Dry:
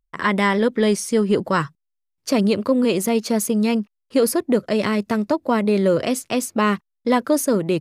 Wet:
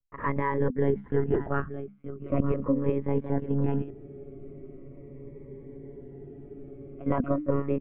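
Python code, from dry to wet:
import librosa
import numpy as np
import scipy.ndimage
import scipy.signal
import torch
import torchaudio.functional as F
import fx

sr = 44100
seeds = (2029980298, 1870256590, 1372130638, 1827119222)

y = scipy.signal.sosfilt(scipy.signal.butter(4, 1700.0, 'lowpass', fs=sr, output='sos'), x)
y = fx.hum_notches(y, sr, base_hz=50, count=6)
y = y + 10.0 ** (-12.0 / 20.0) * np.pad(y, (int(922 * sr / 1000.0), 0))[:len(y)]
y = fx.lpc_monotone(y, sr, seeds[0], pitch_hz=140.0, order=16)
y = fx.spec_freeze(y, sr, seeds[1], at_s=3.92, hold_s=3.08)
y = fx.notch_cascade(y, sr, direction='falling', hz=0.4)
y = y * 10.0 ** (-6.0 / 20.0)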